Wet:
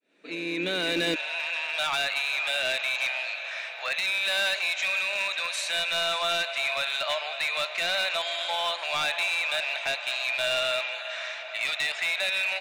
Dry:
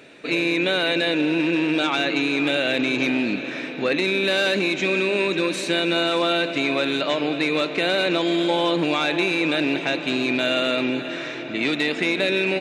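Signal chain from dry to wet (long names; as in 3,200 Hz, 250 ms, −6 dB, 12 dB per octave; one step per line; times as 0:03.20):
fade in at the beginning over 1.26 s
Chebyshev high-pass filter 170 Hz, order 5, from 0:01.14 630 Hz
dynamic equaliser 830 Hz, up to −4 dB, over −40 dBFS, Q 0.78
hard clipping −21 dBFS, distortion −15 dB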